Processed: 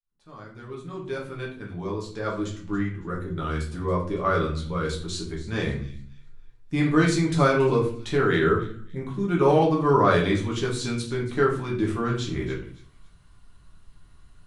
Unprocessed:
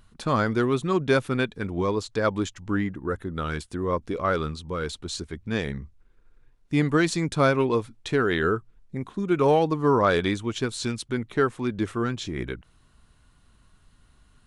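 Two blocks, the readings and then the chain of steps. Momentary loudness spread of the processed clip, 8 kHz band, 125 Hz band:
15 LU, -0.5 dB, +2.0 dB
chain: fade-in on the opening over 4.34 s; on a send: feedback echo behind a high-pass 279 ms, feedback 32%, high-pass 2.9 kHz, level -16 dB; on the sum: simulated room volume 52 m³, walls mixed, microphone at 0.93 m; trim -4 dB

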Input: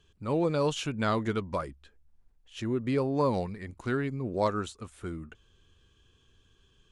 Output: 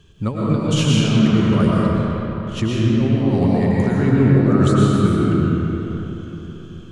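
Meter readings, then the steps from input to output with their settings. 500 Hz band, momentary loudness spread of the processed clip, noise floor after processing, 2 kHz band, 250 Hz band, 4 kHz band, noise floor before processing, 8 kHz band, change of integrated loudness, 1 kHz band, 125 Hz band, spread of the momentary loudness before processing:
+9.0 dB, 13 LU, -36 dBFS, +10.0 dB, +17.0 dB, +14.0 dB, -66 dBFS, no reading, +13.5 dB, +7.0 dB, +19.5 dB, 13 LU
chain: compressor with a negative ratio -32 dBFS, ratio -0.5; peaking EQ 150 Hz +9 dB 2.1 oct; algorithmic reverb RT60 3.9 s, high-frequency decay 0.6×, pre-delay 75 ms, DRR -6 dB; trim +6 dB

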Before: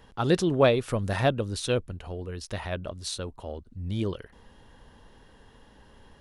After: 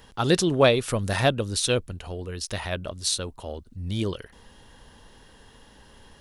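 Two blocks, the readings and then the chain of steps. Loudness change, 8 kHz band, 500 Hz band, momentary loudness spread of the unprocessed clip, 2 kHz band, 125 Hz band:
+3.0 dB, +10.0 dB, +2.0 dB, 16 LU, +4.5 dB, +1.5 dB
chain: treble shelf 2.9 kHz +9.5 dB; trim +1.5 dB

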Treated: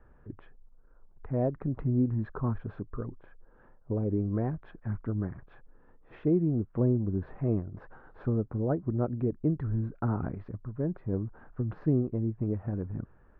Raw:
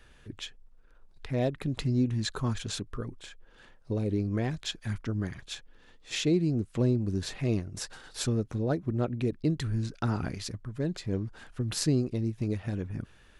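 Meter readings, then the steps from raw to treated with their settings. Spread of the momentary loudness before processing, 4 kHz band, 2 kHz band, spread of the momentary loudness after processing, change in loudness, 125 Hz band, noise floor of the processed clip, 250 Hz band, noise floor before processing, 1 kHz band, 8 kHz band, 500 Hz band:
13 LU, under -35 dB, -10.5 dB, 13 LU, 0.0 dB, 0.0 dB, -58 dBFS, 0.0 dB, -57 dBFS, -1.0 dB, under -40 dB, 0.0 dB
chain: low-pass 1.3 kHz 24 dB/octave

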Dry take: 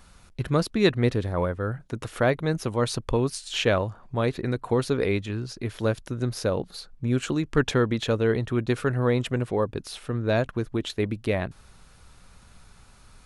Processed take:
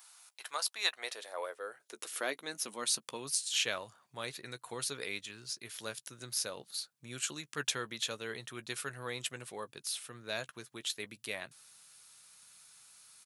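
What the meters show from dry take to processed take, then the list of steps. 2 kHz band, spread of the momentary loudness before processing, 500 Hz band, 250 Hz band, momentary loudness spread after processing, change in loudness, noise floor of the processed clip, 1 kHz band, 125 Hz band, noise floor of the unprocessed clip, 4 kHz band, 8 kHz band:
-7.5 dB, 8 LU, -18.5 dB, -23.5 dB, 23 LU, -11.0 dB, -76 dBFS, -12.0 dB, -26.5 dB, -53 dBFS, -2.0 dB, +4.0 dB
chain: high-pass sweep 800 Hz -> 120 Hz, 0.81–3.59 s; differentiator; doubling 14 ms -13 dB; trim +3.5 dB

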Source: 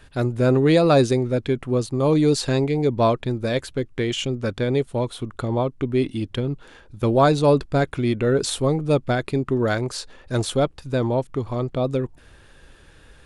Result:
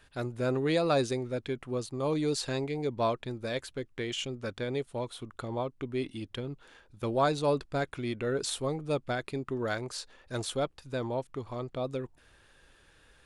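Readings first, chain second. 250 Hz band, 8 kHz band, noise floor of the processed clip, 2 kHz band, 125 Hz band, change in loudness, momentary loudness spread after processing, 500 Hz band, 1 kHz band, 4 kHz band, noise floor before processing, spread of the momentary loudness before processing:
-12.5 dB, -7.5 dB, -62 dBFS, -8.0 dB, -14.0 dB, -11.0 dB, 11 LU, -10.5 dB, -9.0 dB, -7.5 dB, -50 dBFS, 10 LU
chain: bass shelf 440 Hz -7 dB; trim -7.5 dB

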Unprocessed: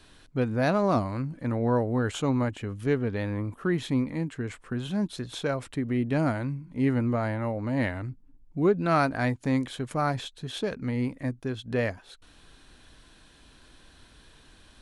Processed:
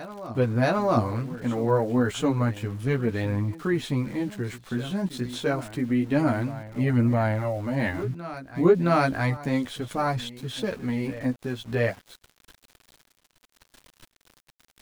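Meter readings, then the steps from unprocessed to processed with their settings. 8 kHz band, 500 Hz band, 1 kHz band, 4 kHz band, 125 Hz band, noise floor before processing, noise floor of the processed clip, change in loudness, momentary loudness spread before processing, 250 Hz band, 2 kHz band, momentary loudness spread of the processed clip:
+2.5 dB, +2.5 dB, +2.0 dB, +2.0 dB, +3.0 dB, -56 dBFS, -72 dBFS, +2.0 dB, 9 LU, +2.0 dB, +2.5 dB, 9 LU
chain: chorus voices 2, 0.29 Hz, delay 13 ms, depth 4.3 ms; small samples zeroed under -49 dBFS; reverse echo 668 ms -15 dB; trim +5 dB

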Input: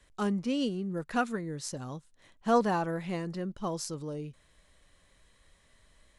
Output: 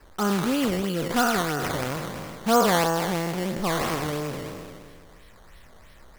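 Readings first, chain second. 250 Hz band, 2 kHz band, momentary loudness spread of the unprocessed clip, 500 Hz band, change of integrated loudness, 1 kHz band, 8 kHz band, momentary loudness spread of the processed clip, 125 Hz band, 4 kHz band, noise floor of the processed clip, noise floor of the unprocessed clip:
+6.0 dB, +11.0 dB, 14 LU, +7.5 dB, +7.5 dB, +8.5 dB, +10.5 dB, 13 LU, +7.5 dB, +12.0 dB, -50 dBFS, -66 dBFS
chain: spectral sustain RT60 1.90 s; in parallel at +1.5 dB: compression, threshold -38 dBFS, peak gain reduction 18.5 dB; on the sum: decimation with a swept rate 12×, swing 100% 3 Hz; trim +2 dB

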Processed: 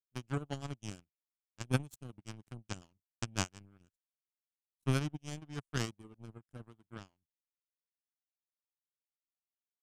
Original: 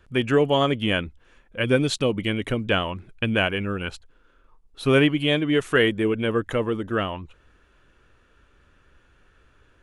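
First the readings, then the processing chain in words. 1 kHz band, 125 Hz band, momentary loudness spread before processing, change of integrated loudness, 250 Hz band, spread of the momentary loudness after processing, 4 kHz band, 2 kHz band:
-18.0 dB, -11.0 dB, 11 LU, -16.5 dB, -19.0 dB, 18 LU, -20.0 dB, -21.5 dB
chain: rotary cabinet horn 5.5 Hz, later 0.85 Hz, at 4.22 s; power-law waveshaper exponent 3; ten-band graphic EQ 125 Hz +6 dB, 500 Hz -11 dB, 1 kHz -4 dB, 2 kHz -11 dB, 4 kHz -12 dB, 8 kHz +5 dB; trim +4 dB

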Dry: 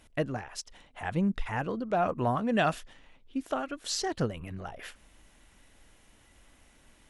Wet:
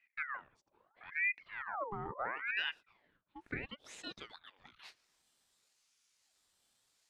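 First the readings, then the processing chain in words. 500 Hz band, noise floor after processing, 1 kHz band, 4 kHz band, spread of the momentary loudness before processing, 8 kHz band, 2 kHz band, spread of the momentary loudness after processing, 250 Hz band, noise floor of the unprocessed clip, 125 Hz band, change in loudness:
-17.0 dB, -80 dBFS, -11.5 dB, -6.5 dB, 15 LU, -20.0 dB, +0.5 dB, 22 LU, -22.0 dB, -62 dBFS, -20.0 dB, -7.5 dB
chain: band-pass sweep 250 Hz -> 5.5 kHz, 2.07–5.29 s; ring modulator with a swept carrier 1.4 kHz, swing 60%, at 0.75 Hz

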